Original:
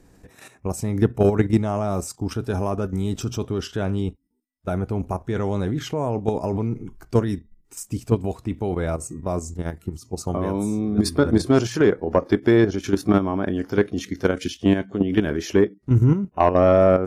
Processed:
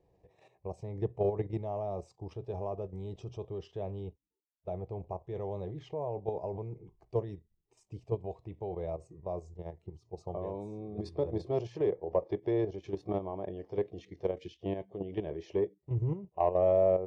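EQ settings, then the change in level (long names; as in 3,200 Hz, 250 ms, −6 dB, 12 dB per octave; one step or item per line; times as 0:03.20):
high-pass filter 160 Hz 6 dB per octave
head-to-tape spacing loss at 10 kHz 36 dB
phaser with its sweep stopped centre 600 Hz, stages 4
−6.5 dB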